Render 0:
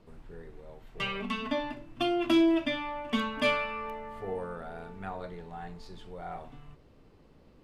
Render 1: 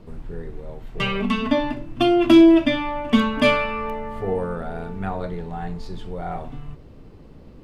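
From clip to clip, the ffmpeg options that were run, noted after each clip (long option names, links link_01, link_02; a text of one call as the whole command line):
ffmpeg -i in.wav -af "lowshelf=frequency=410:gain=8,volume=7.5dB" out.wav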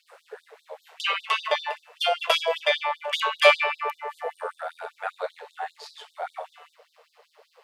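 ffmpeg -i in.wav -af "tremolo=f=160:d=0.462,afftfilt=real='re*gte(b*sr/1024,420*pow(3600/420,0.5+0.5*sin(2*PI*5.1*pts/sr)))':imag='im*gte(b*sr/1024,420*pow(3600/420,0.5+0.5*sin(2*PI*5.1*pts/sr)))':win_size=1024:overlap=0.75,volume=5.5dB" out.wav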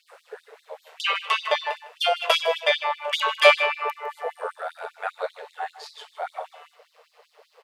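ffmpeg -i in.wav -af "aecho=1:1:155:0.158,volume=1.5dB" out.wav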